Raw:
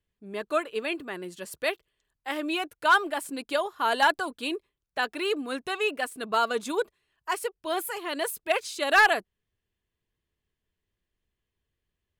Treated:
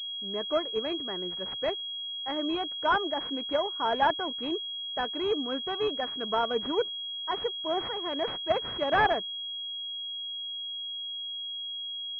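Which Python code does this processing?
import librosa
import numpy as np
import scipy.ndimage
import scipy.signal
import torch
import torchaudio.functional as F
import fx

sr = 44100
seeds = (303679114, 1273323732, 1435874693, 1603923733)

y = fx.dynamic_eq(x, sr, hz=1300.0, q=2.4, threshold_db=-38.0, ratio=4.0, max_db=-5)
y = fx.pwm(y, sr, carrier_hz=3300.0)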